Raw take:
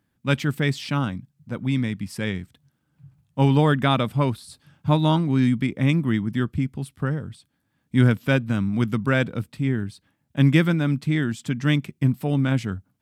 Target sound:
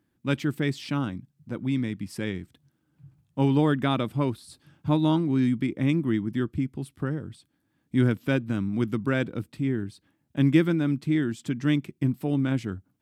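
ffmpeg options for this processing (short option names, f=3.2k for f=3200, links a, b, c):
-filter_complex "[0:a]equalizer=f=330:w=2.4:g=9,asplit=2[a][b];[b]acompressor=threshold=-31dB:ratio=6,volume=-3dB[c];[a][c]amix=inputs=2:normalize=0,volume=-7.5dB"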